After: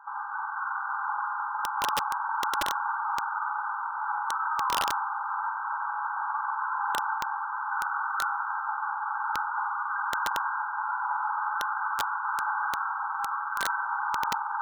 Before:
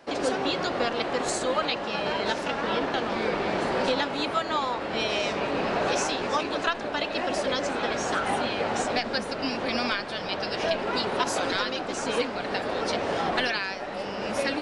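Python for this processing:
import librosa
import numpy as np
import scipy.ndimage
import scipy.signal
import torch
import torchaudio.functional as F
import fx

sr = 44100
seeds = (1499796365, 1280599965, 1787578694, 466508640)

y = fx.over_compress(x, sr, threshold_db=-32.0, ratio=-1.0)
y = fx.brickwall_bandpass(y, sr, low_hz=800.0, high_hz=1600.0)
y = fx.rev_spring(y, sr, rt60_s=3.1, pass_ms=(45,), chirp_ms=35, drr_db=-1.5)
y = (np.mod(10.0 ** (24.0 / 20.0) * y + 1.0, 2.0) - 1.0) / 10.0 ** (24.0 / 20.0)
y = y * 10.0 ** (5.0 / 20.0)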